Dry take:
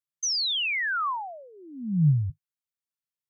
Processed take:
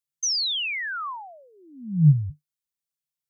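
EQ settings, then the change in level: low shelf 86 Hz +9.5 dB; bell 150 Hz +10 dB 0.34 oct; high shelf 2500 Hz +10 dB; -6.0 dB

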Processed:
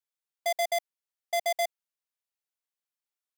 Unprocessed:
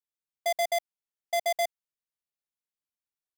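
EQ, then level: HPF 460 Hz 12 dB/oct; 0.0 dB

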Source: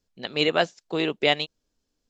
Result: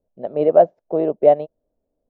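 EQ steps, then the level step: synth low-pass 620 Hz, resonance Q 4.9; +1.0 dB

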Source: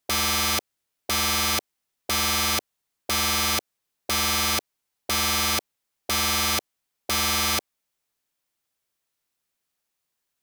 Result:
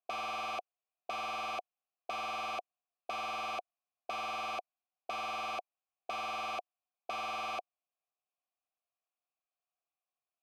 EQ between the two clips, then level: vowel filter a; tone controls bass +3 dB, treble -3 dB; 0.0 dB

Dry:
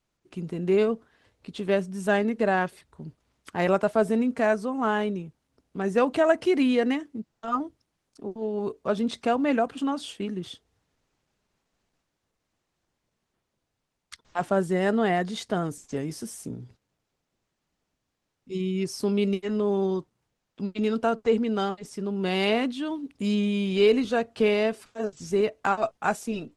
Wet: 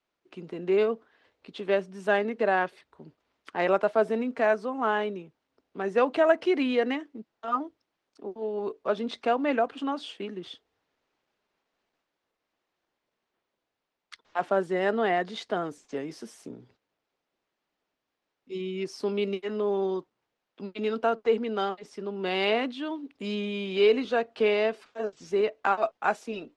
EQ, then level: three-band isolator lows -16 dB, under 270 Hz, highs -17 dB, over 5000 Hz; 0.0 dB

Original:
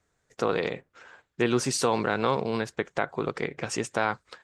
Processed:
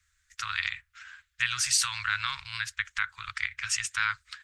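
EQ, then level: inverse Chebyshev band-stop 170–700 Hz, stop band 50 dB; +5.5 dB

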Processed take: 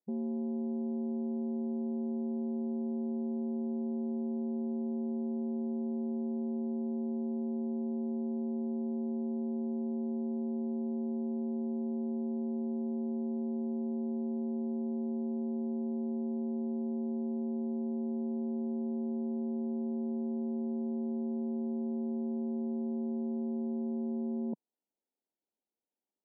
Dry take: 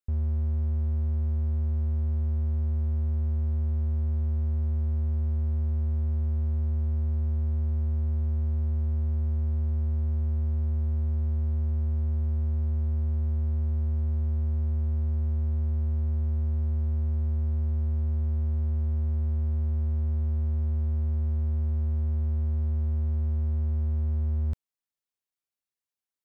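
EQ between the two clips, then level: brick-wall FIR band-pass 180–1000 Hz; bell 280 Hz +10.5 dB 2.8 oct; 0.0 dB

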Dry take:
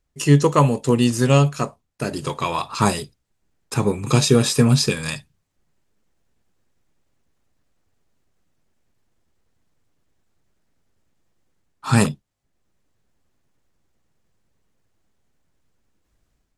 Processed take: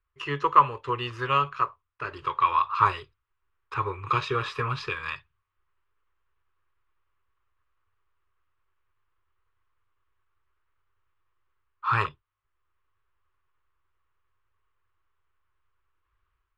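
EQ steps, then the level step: EQ curve 100 Hz 0 dB, 210 Hz -28 dB, 370 Hz -3 dB, 720 Hz -10 dB, 1100 Hz +14 dB, 1800 Hz +4 dB, 2900 Hz +3 dB, 8300 Hz -29 dB; -7.5 dB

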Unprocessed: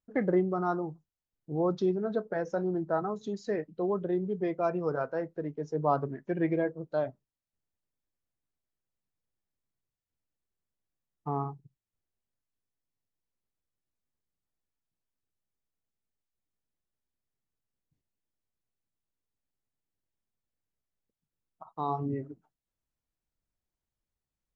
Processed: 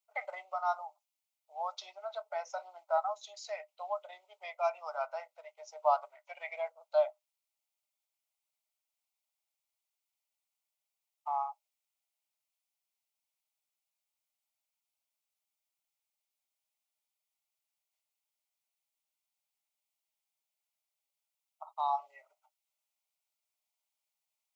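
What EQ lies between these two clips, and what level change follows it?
rippled Chebyshev high-pass 590 Hz, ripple 6 dB; Butterworth band-stop 1700 Hz, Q 3.2; high shelf 4000 Hz +9 dB; +4.0 dB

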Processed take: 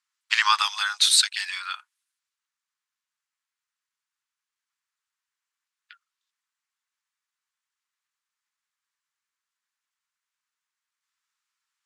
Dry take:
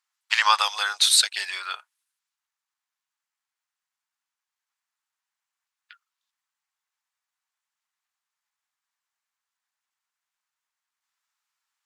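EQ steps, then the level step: HPF 1000 Hz 24 dB/oct; LPF 11000 Hz; 0.0 dB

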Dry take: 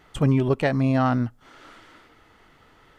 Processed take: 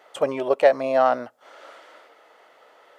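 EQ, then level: resonant high-pass 570 Hz, resonance Q 3.7; 0.0 dB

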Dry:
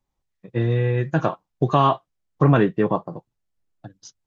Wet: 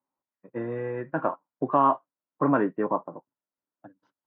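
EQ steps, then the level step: speaker cabinet 230–2100 Hz, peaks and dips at 270 Hz +9 dB, 580 Hz +6 dB, 970 Hz +9 dB, 1400 Hz +5 dB; -8.5 dB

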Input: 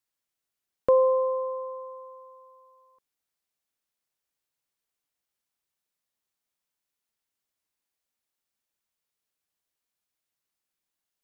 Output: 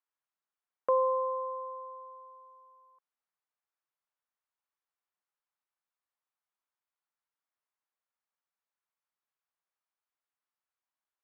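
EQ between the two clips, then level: band-pass 1100 Hz, Q 1.4; 0.0 dB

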